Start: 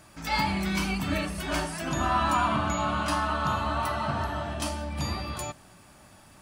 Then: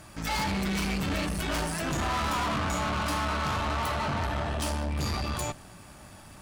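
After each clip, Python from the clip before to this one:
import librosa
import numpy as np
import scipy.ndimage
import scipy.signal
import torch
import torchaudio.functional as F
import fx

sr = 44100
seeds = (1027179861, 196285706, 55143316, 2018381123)

y = fx.low_shelf(x, sr, hz=110.0, db=5.5)
y = fx.tube_stage(y, sr, drive_db=34.0, bias=0.65)
y = y * librosa.db_to_amplitude(7.0)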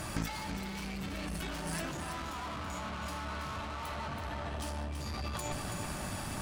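y = fx.over_compress(x, sr, threshold_db=-39.0, ratio=-1.0)
y = y + 10.0 ** (-7.5 / 20.0) * np.pad(y, (int(329 * sr / 1000.0), 0))[:len(y)]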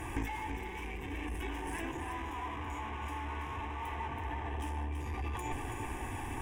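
y = fx.high_shelf(x, sr, hz=4200.0, db=-11.5)
y = fx.fixed_phaser(y, sr, hz=900.0, stages=8)
y = y * librosa.db_to_amplitude(4.0)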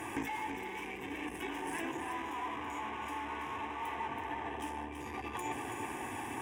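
y = scipy.signal.sosfilt(scipy.signal.butter(2, 190.0, 'highpass', fs=sr, output='sos'), x)
y = y * librosa.db_to_amplitude(1.5)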